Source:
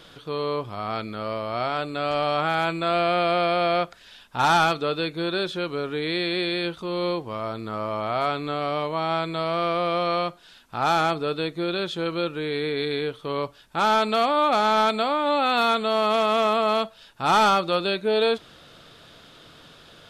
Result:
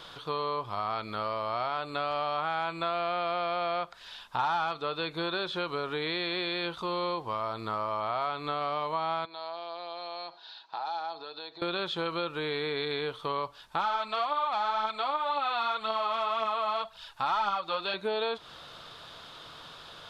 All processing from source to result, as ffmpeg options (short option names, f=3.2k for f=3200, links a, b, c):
-filter_complex "[0:a]asettb=1/sr,asplit=3[a][b][c];[a]atrim=end=9.254[d];[b]atrim=start=9.25:end=11.62,asetpts=PTS-STARTPTS,afade=t=in:d=0.004:c=qsin,afade=t=out:st=2.366:d=0.004:c=qsin,aecho=1:1:6.2:0.43,atrim=end_sample=104517,acompressor=threshold=-33dB:ratio=10:attack=3.2:release=140:knee=1:detection=peak,highpass=480,equalizer=f=530:t=q:w=4:g=-5,equalizer=f=830:t=q:w=4:g=4,equalizer=f=1.2k:t=q:w=4:g=-9,equalizer=f=2.1k:t=q:w=4:g=-8,equalizer=f=3k:t=q:w=4:g=-5,equalizer=f=4.2k:t=q:w=4:g=7,lowpass=f=4.5k:w=0.5412,lowpass=f=4.5k:w=1.3066[e];[c]atrim=start=11.616[f];[d][e]acrossfade=d=0.004:c1=hsin:c2=qsin[g];[g][f]acrossfade=d=0.004:c1=qsin:c2=hsin,asettb=1/sr,asplit=3[h][i][j];[h]atrim=end=13.804[k];[i]atrim=start=13.8:end=17.94,asetpts=PTS-STARTPTS,afade=t=in:d=0.004:c=qsin,afade=t=out:st=4.136:d=0.004:c=qsin,equalizer=f=340:w=0.94:g=-7.5,aphaser=in_gain=1:out_gain=1:delay=3.9:decay=0.48:speed=1.9:type=triangular[l];[j]atrim=start=17.936[m];[k][l]acrossfade=d=0.004:c1=hsin:c2=qsin[n];[n][m]acrossfade=d=0.004:c1=qsin:c2=hsin,acrossover=split=4400[o][p];[p]acompressor=threshold=-49dB:ratio=4:attack=1:release=60[q];[o][q]amix=inputs=2:normalize=0,equalizer=f=250:t=o:w=1:g=-4,equalizer=f=1k:t=o:w=1:g=10,equalizer=f=4k:t=o:w=1:g=6,acompressor=threshold=-26dB:ratio=4,volume=-3dB"